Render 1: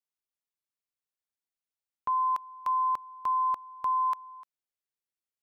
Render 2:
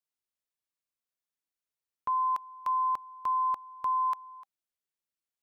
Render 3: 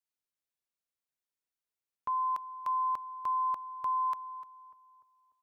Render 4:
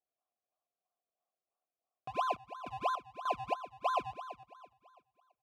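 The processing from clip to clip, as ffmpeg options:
ffmpeg -i in.wav -af "bandreject=frequency=790:width=16,volume=-1dB" out.wav
ffmpeg -i in.wav -filter_complex "[0:a]asplit=2[link_01][link_02];[link_02]adelay=296,lowpass=frequency=1300:poles=1,volume=-16dB,asplit=2[link_03][link_04];[link_04]adelay=296,lowpass=frequency=1300:poles=1,volume=0.53,asplit=2[link_05][link_06];[link_06]adelay=296,lowpass=frequency=1300:poles=1,volume=0.53,asplit=2[link_07][link_08];[link_08]adelay=296,lowpass=frequency=1300:poles=1,volume=0.53,asplit=2[link_09][link_10];[link_10]adelay=296,lowpass=frequency=1300:poles=1,volume=0.53[link_11];[link_01][link_03][link_05][link_07][link_09][link_11]amix=inputs=6:normalize=0,volume=-3dB" out.wav
ffmpeg -i in.wav -filter_complex "[0:a]acrusher=samples=33:mix=1:aa=0.000001:lfo=1:lforange=33:lforate=3,asplit=3[link_01][link_02][link_03];[link_01]bandpass=frequency=730:width_type=q:width=8,volume=0dB[link_04];[link_02]bandpass=frequency=1090:width_type=q:width=8,volume=-6dB[link_05];[link_03]bandpass=frequency=2440:width_type=q:width=8,volume=-9dB[link_06];[link_04][link_05][link_06]amix=inputs=3:normalize=0,volume=8.5dB" out.wav

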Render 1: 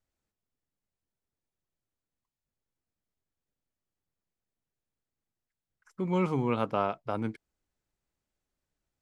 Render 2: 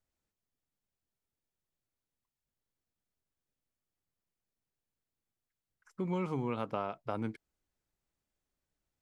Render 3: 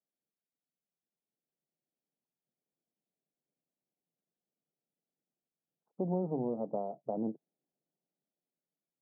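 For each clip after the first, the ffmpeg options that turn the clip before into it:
ffmpeg -i in.wav -af "acompressor=threshold=-28dB:ratio=6,volume=-2dB" out.wav
ffmpeg -i in.wav -af "aeval=exprs='0.119*(cos(1*acos(clip(val(0)/0.119,-1,1)))-cos(1*PI/2))+0.015*(cos(8*acos(clip(val(0)/0.119,-1,1)))-cos(8*PI/2))':channel_layout=same,dynaudnorm=framelen=380:gausssize=7:maxgain=8dB,asuperpass=centerf=340:order=12:qfactor=0.52,volume=-6dB" out.wav

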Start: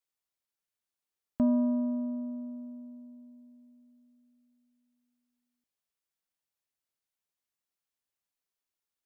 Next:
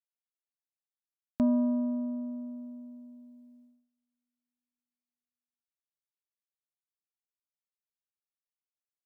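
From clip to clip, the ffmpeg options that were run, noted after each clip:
ffmpeg -i in.wav -af "agate=range=-23dB:threshold=-58dB:ratio=16:detection=peak" out.wav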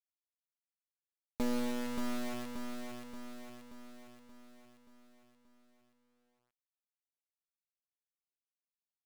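ffmpeg -i in.wav -af "acrusher=bits=3:dc=4:mix=0:aa=0.000001,aecho=1:1:579|1158|1737|2316|2895|3474|4053:0.562|0.304|0.164|0.0885|0.0478|0.0258|0.0139,volume=-4dB" out.wav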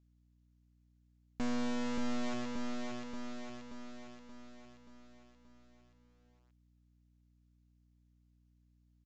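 ffmpeg -i in.wav -af "aresample=16000,asoftclip=type=tanh:threshold=-32dB,aresample=44100,aeval=exprs='val(0)+0.000251*(sin(2*PI*60*n/s)+sin(2*PI*2*60*n/s)/2+sin(2*PI*3*60*n/s)/3+sin(2*PI*4*60*n/s)/4+sin(2*PI*5*60*n/s)/5)':channel_layout=same,volume=4.5dB" out.wav

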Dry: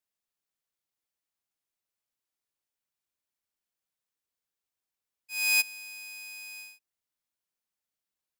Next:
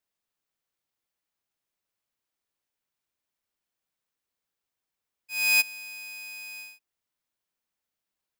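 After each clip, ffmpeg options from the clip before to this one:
ffmpeg -i in.wav -af "equalizer=frequency=11000:width_type=o:width=2.2:gain=-4.5,volume=4.5dB" out.wav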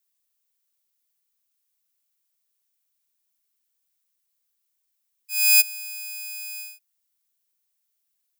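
ffmpeg -i in.wav -af "crystalizer=i=6:c=0,volume=-8dB" out.wav

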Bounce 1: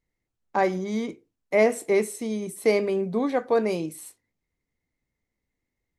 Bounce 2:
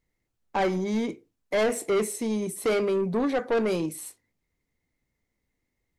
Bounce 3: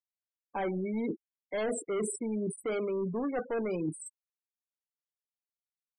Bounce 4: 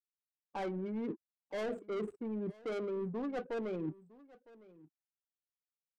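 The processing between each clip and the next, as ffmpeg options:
ffmpeg -i in.wav -af "asoftclip=type=tanh:threshold=-23dB,volume=3dB" out.wav
ffmpeg -i in.wav -af "afftfilt=real='re*gte(hypot(re,im),0.0355)':imag='im*gte(hypot(re,im),0.0355)':win_size=1024:overlap=0.75,areverse,acompressor=threshold=-34dB:ratio=16,areverse,volume=4dB" out.wav
ffmpeg -i in.wav -af "adynamicsmooth=sensitivity=7:basefreq=500,aecho=1:1:958:0.0841,volume=-5dB" out.wav

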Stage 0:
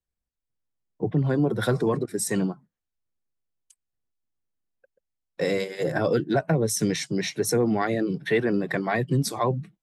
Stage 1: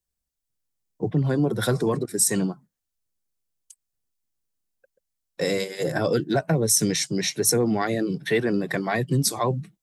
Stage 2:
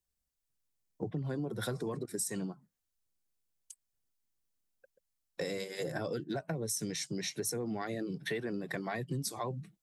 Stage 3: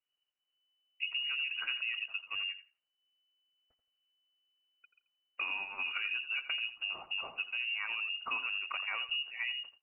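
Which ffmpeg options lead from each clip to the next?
ffmpeg -i in.wav -af "bass=frequency=250:gain=1,treble=frequency=4000:gain=9" out.wav
ffmpeg -i in.wav -af "acompressor=threshold=-33dB:ratio=4,volume=-2.5dB" out.wav
ffmpeg -i in.wav -filter_complex "[0:a]lowpass=frequency=2600:width_type=q:width=0.5098,lowpass=frequency=2600:width_type=q:width=0.6013,lowpass=frequency=2600:width_type=q:width=0.9,lowpass=frequency=2600:width_type=q:width=2.563,afreqshift=-3000,asplit=2[link_01][link_02];[link_02]adelay=85,lowpass=frequency=2100:poles=1,volume=-10dB,asplit=2[link_03][link_04];[link_04]adelay=85,lowpass=frequency=2100:poles=1,volume=0.23,asplit=2[link_05][link_06];[link_06]adelay=85,lowpass=frequency=2100:poles=1,volume=0.23[link_07];[link_01][link_03][link_05][link_07]amix=inputs=4:normalize=0" out.wav

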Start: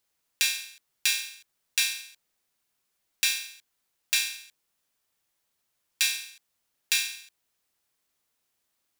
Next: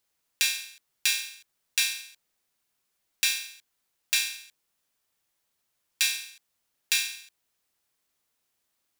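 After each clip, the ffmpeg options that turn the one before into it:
ffmpeg -i in.wav -af anull out.wav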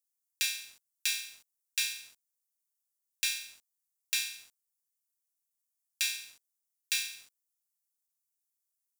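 ffmpeg -i in.wav -filter_complex "[0:a]highpass=frequency=1300:poles=1,acrossover=split=5700[link_01][link_02];[link_01]aeval=exprs='val(0)*gte(abs(val(0)),0.00266)':channel_layout=same[link_03];[link_03][link_02]amix=inputs=2:normalize=0,volume=-5.5dB" out.wav

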